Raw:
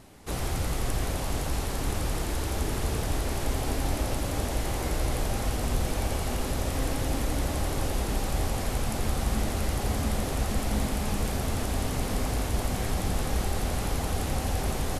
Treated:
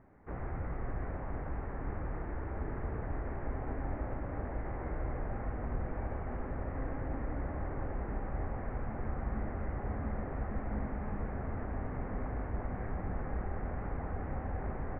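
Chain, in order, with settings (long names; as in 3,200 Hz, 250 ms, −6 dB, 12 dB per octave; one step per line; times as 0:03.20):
Butterworth low-pass 2,000 Hz 48 dB per octave
level −8.5 dB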